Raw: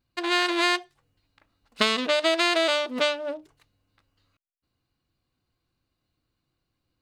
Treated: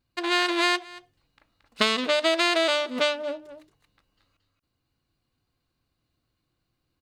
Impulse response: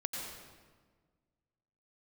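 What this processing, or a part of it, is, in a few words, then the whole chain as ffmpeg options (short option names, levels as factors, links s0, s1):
ducked delay: -filter_complex "[0:a]asplit=3[s0][s1][s2];[s1]adelay=226,volume=0.562[s3];[s2]apad=whole_len=319271[s4];[s3][s4]sidechaincompress=threshold=0.00631:ratio=6:attack=29:release=349[s5];[s0][s5]amix=inputs=2:normalize=0"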